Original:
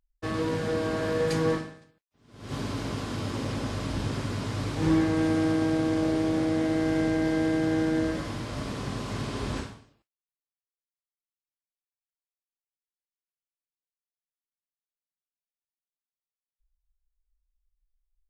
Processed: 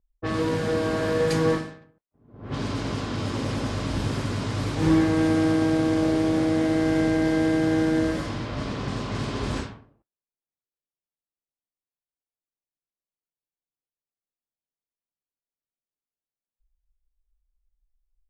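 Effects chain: low-pass opened by the level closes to 690 Hz, open at -26 dBFS; gain +3.5 dB

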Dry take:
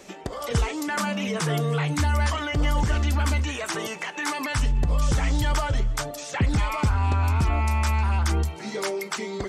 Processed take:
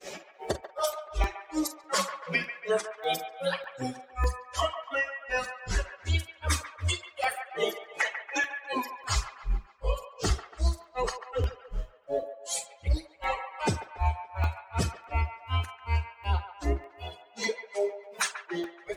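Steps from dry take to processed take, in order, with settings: HPF 48 Hz 24 dB/oct; notches 50/100/150/200/250/300/350/400/450 Hz; reverb removal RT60 1.1 s; graphic EQ 125/250/500/1000 Hz -9/-9/+6/-3 dB; in parallel at +0.5 dB: negative-ratio compressor -35 dBFS, ratio -1; on the sum: bit-crush 11-bit; grains 0.108 s, grains 5.3/s, spray 14 ms, pitch spread up and down by 3 st; plain phase-vocoder stretch 2×; on a send: band-limited delay 0.142 s, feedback 53%, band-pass 1200 Hz, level -9 dB; on the sum: crackling interface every 0.60 s, samples 64, zero, from 0.64; gain +3.5 dB

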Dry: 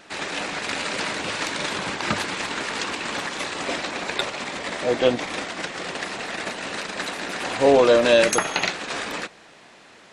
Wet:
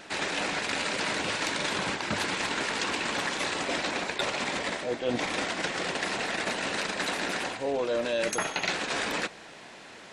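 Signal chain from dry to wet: reverse; compressor 10:1, threshold -28 dBFS, peak gain reduction 16.5 dB; reverse; notch 1200 Hz, Q 20; gain +2 dB

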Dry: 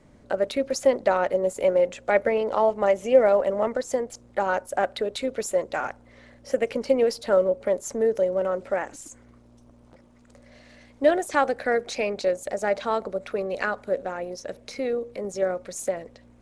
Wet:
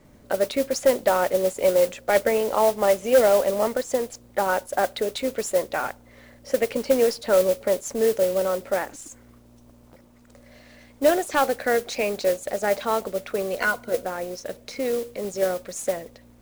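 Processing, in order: 13.6–14.03 ripple EQ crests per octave 1.9, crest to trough 13 dB; modulation noise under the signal 16 dB; hard clip -12 dBFS, distortion -21 dB; gain +1.5 dB

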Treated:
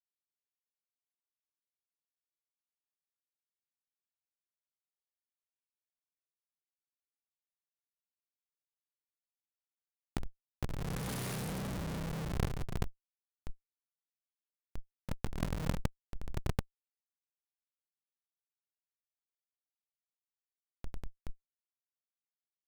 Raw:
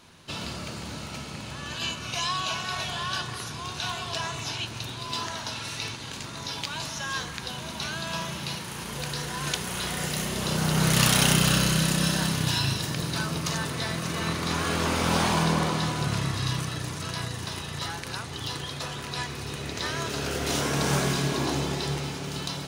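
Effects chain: EQ curve 160 Hz 0 dB, 3000 Hz -21 dB, 10000 Hz +7 dB; Schroeder reverb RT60 2 s, combs from 31 ms, DRR -2.5 dB; Schmitt trigger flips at -16 dBFS; negative-ratio compressor -33 dBFS, ratio -0.5

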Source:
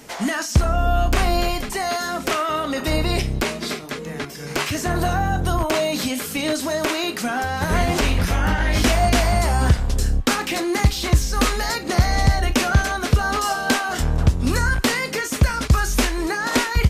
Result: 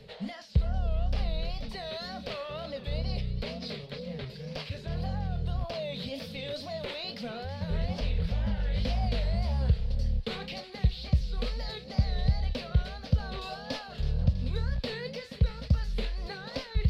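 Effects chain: EQ curve 200 Hz 0 dB, 330 Hz -25 dB, 490 Hz +1 dB, 720 Hz -11 dB, 1300 Hz -18 dB, 4500 Hz -3 dB, 6400 Hz -27 dB; reverse; upward compressor, threshold -22 dBFS; reverse; wow and flutter 150 cents; thin delay 0.325 s, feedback 54%, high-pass 2000 Hz, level -12 dB; gain -8.5 dB

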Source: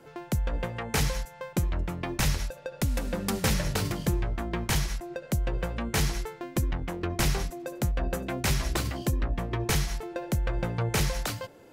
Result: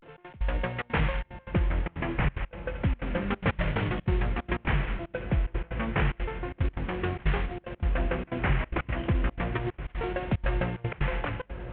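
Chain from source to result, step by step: CVSD 16 kbps; 9.55–10.13 negative-ratio compressor -33 dBFS, ratio -0.5; vibrato 0.32 Hz 71 cents; diffused feedback echo 1.099 s, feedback 47%, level -12 dB; dynamic EQ 2000 Hz, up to +4 dB, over -48 dBFS, Q 1; step gate "xx.x.xxxxx.xx" 184 bpm -24 dB; gain +1.5 dB

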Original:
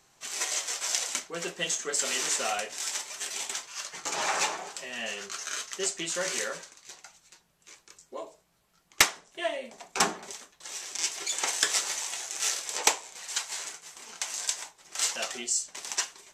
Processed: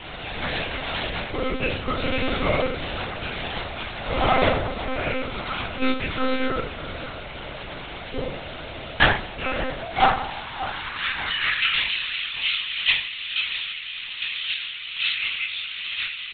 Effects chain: one diode to ground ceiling -12.5 dBFS; comb 2.3 ms, depth 69%; requantised 6-bit, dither triangular; formant shift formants -3 st; frequency shift -15 Hz; high-pass sweep 430 Hz -> 2700 Hz, 9.46–11.95; narrowing echo 0.588 s, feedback 46%, band-pass 860 Hz, level -12 dB; shoebox room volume 44 m³, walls mixed, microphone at 2.9 m; monotone LPC vocoder at 8 kHz 260 Hz; gain -7 dB

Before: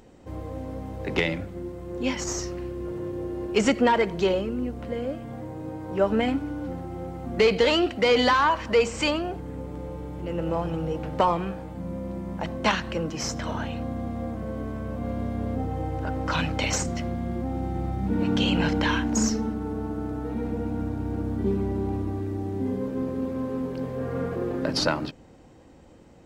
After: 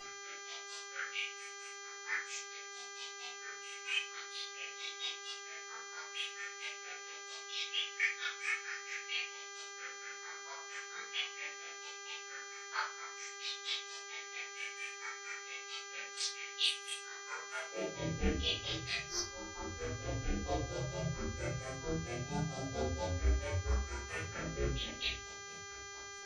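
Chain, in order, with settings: steep low-pass 6200 Hz 48 dB/oct; differentiator; compressor 5:1, threshold -52 dBFS, peak gain reduction 21 dB; phaser stages 4, 0.45 Hz, lowest notch 520–1600 Hz; ring modulator 190 Hz; high-pass sweep 2000 Hz -> 67 Hz, 17.26–18.11; grains 0.144 s, grains 4.4/s, pitch spread up and down by 7 st; rotary speaker horn 1.2 Hz, later 7.5 Hz, at 3.81; buzz 400 Hz, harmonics 17, -73 dBFS -3 dB/oct; reverse echo 31 ms -4.5 dB; shoebox room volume 170 m³, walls furnished, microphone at 4.6 m; gain +18 dB

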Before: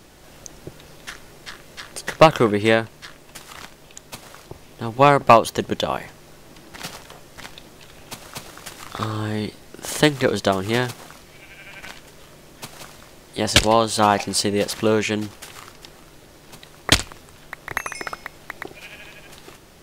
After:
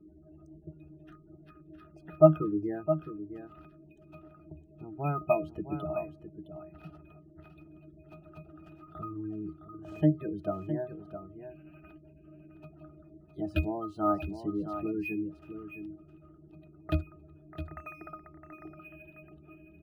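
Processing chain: band noise 200–410 Hz -48 dBFS; spectral gate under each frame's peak -15 dB strong; octave resonator D#, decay 0.17 s; on a send: echo 0.662 s -10 dB; on the sum: decimation joined by straight lines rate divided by 3×

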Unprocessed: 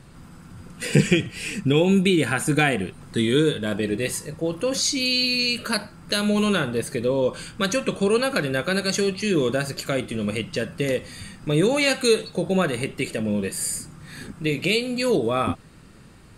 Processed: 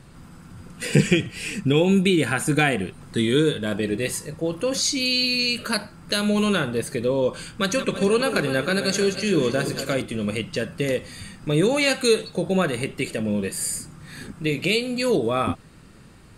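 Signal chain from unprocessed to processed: 7.56–10.02 regenerating reverse delay 0.164 s, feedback 61%, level -10 dB

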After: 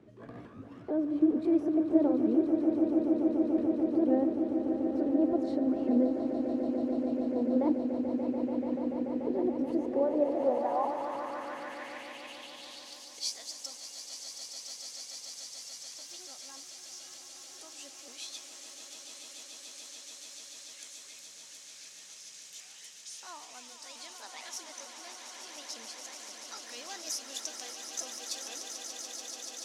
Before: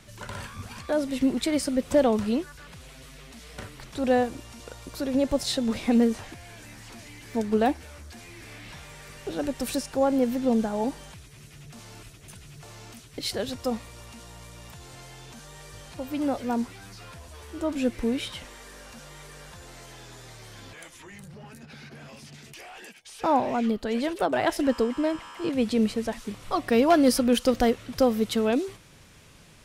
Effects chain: repeated pitch sweeps +4 st, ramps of 0.452 s; in parallel at +1 dB: compressor, threshold -33 dBFS, peak gain reduction 16 dB; on the sum: swelling echo 0.145 s, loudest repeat 8, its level -10 dB; band-pass sweep 340 Hz -> 6300 Hz, 9.79–13.31; gain -1.5 dB

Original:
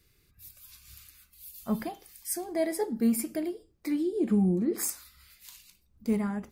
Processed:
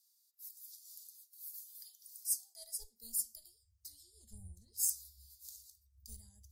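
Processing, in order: high-pass sweep 1900 Hz -> 85 Hz, 2.13–3.74; added harmonics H 3 -20 dB, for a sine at -14 dBFS; inverse Chebyshev band-stop 150–2600 Hz, stop band 40 dB; gain +2 dB

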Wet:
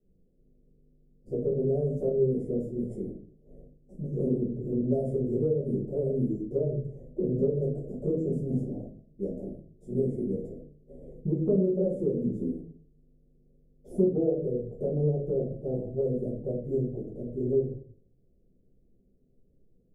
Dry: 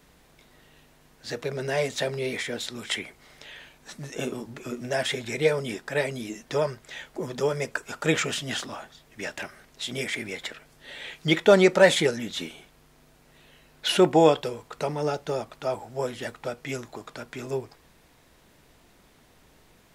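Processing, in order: gate -45 dBFS, range -15 dB; inverse Chebyshev band-stop 1100–4200 Hz, stop band 50 dB; bell 1000 Hz -14 dB 0.56 oct; de-hum 53.91 Hz, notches 12; compressor 6:1, threshold -31 dBFS, peak gain reduction 14.5 dB; air absorption 430 m; shoebox room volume 36 m³, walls mixed, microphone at 1 m

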